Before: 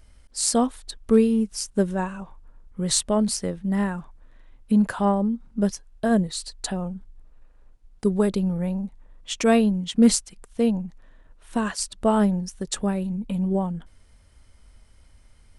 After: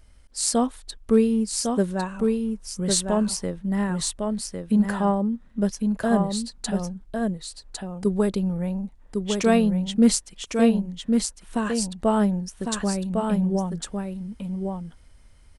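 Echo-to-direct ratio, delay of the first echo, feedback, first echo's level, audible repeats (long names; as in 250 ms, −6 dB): −4.5 dB, 1,104 ms, repeats not evenly spaced, −4.5 dB, 1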